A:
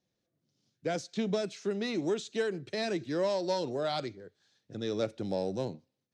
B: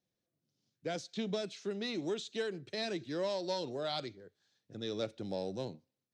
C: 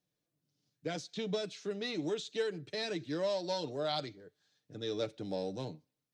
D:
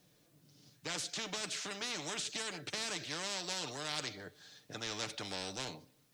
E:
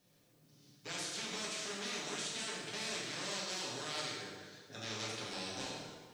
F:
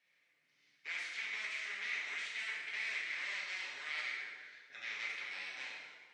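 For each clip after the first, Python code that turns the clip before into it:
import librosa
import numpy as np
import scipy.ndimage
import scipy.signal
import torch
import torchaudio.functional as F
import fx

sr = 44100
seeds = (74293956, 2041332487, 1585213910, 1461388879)

y1 = fx.dynamic_eq(x, sr, hz=3600.0, q=1.6, threshold_db=-55.0, ratio=4.0, max_db=6)
y1 = y1 * 10.0 ** (-5.5 / 20.0)
y2 = y1 + 0.45 * np.pad(y1, (int(6.7 * sr / 1000.0), 0))[:len(y1)]
y3 = fx.spectral_comp(y2, sr, ratio=4.0)
y4 = fx.rev_plate(y3, sr, seeds[0], rt60_s=1.6, hf_ratio=0.75, predelay_ms=0, drr_db=-5.0)
y4 = y4 * 10.0 ** (-6.5 / 20.0)
y5 = fx.bandpass_q(y4, sr, hz=2100.0, q=6.3)
y5 = y5 * 10.0 ** (12.0 / 20.0)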